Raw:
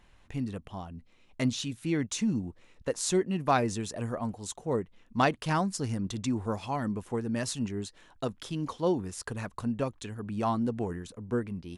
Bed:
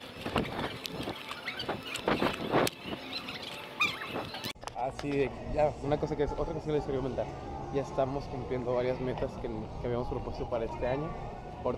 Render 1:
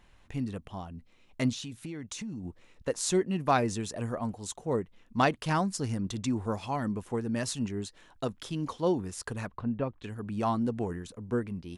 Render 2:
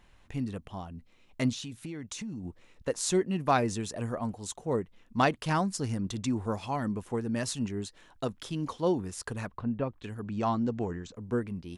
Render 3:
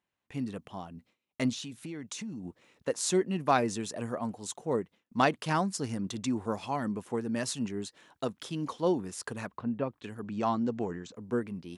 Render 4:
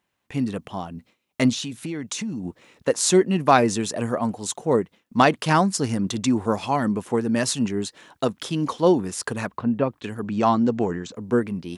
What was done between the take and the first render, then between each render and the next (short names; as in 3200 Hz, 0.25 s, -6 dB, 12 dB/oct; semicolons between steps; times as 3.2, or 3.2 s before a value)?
1.52–2.45 compressor 10:1, threshold -35 dBFS; 9.47–10.04 air absorption 370 m
10.23–11.15 steep low-pass 7800 Hz 96 dB/oct
HPF 150 Hz 12 dB/oct; gate with hold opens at -52 dBFS
gain +10 dB; limiter -3 dBFS, peak gain reduction 3 dB